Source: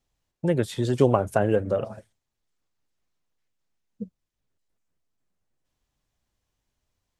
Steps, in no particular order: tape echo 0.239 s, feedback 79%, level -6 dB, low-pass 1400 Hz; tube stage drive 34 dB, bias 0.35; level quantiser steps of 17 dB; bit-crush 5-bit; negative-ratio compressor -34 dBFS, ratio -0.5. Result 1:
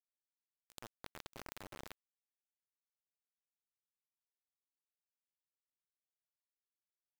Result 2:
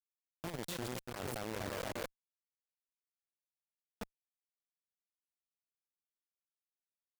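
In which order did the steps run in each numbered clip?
tube stage > tape echo > negative-ratio compressor > bit-crush > level quantiser; tape echo > level quantiser > negative-ratio compressor > bit-crush > tube stage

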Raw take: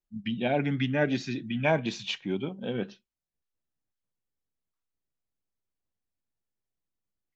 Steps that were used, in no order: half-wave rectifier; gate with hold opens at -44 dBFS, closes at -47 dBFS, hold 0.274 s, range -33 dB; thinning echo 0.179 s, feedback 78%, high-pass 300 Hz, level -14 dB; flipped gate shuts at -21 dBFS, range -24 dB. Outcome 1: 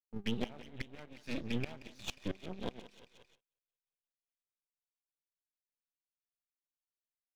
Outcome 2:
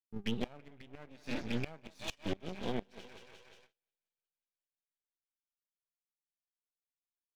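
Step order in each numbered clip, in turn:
flipped gate > thinning echo > half-wave rectifier > gate with hold; thinning echo > gate with hold > half-wave rectifier > flipped gate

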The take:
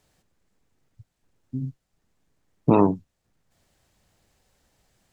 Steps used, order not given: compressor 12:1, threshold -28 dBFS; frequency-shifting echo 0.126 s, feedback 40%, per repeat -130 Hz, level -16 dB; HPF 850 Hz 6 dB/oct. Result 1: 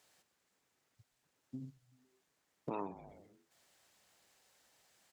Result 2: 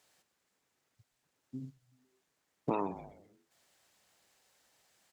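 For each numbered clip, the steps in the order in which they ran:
frequency-shifting echo > compressor > HPF; frequency-shifting echo > HPF > compressor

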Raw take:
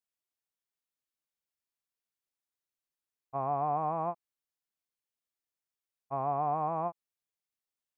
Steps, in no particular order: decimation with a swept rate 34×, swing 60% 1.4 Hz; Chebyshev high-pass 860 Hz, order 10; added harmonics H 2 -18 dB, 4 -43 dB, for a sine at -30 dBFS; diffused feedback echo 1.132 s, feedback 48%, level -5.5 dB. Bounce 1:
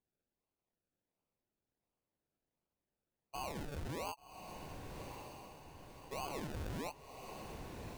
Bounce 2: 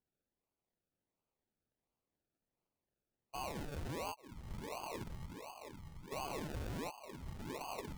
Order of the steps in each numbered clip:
added harmonics > Chebyshev high-pass > decimation with a swept rate > diffused feedback echo; diffused feedback echo > added harmonics > Chebyshev high-pass > decimation with a swept rate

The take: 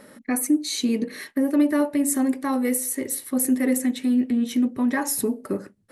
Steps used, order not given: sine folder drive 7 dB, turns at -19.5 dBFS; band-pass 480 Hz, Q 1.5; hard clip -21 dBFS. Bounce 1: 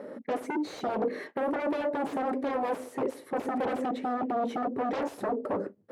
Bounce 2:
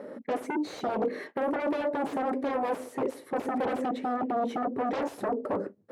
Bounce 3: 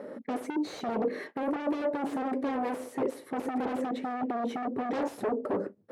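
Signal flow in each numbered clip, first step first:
sine folder > hard clip > band-pass; sine folder > band-pass > hard clip; hard clip > sine folder > band-pass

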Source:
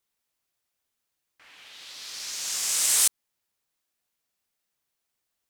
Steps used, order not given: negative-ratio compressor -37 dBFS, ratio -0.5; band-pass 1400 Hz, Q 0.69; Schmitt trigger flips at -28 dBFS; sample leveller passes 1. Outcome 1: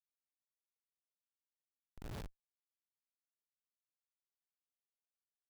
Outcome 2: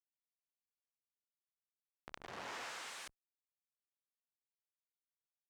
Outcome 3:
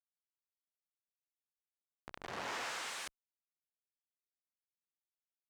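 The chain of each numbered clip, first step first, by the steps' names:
negative-ratio compressor > band-pass > sample leveller > Schmitt trigger; Schmitt trigger > sample leveller > negative-ratio compressor > band-pass; Schmitt trigger > negative-ratio compressor > band-pass > sample leveller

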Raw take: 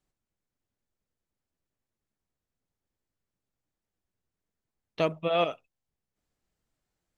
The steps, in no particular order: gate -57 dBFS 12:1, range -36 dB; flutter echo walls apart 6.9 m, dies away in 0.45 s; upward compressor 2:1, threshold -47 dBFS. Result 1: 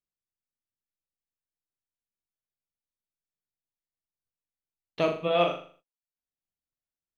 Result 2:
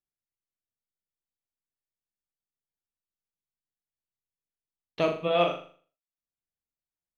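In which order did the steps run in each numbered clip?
upward compressor > flutter echo > gate; upward compressor > gate > flutter echo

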